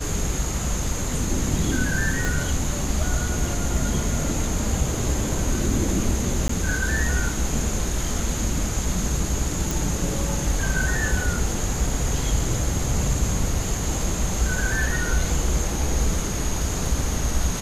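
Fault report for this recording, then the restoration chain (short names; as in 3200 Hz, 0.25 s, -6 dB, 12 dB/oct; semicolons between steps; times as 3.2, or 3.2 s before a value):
2.25 pop
6.48–6.49 gap 14 ms
9.71 pop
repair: de-click; interpolate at 6.48, 14 ms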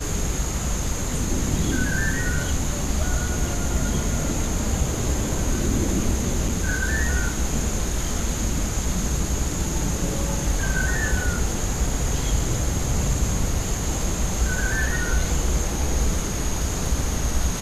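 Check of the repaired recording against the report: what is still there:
2.25 pop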